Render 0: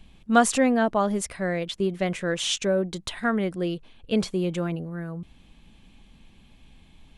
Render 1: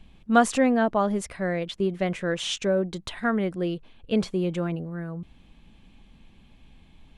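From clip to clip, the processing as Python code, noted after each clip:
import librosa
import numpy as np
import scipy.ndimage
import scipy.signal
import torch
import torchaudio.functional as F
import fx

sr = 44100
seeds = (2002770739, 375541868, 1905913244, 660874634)

y = fx.high_shelf(x, sr, hz=4400.0, db=-7.5)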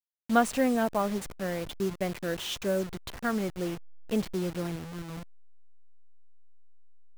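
y = fx.delta_hold(x, sr, step_db=-30.5)
y = y * librosa.db_to_amplitude(-4.5)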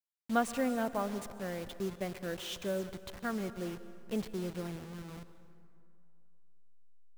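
y = fx.rev_plate(x, sr, seeds[0], rt60_s=2.5, hf_ratio=0.55, predelay_ms=105, drr_db=13.0)
y = y * librosa.db_to_amplitude(-6.5)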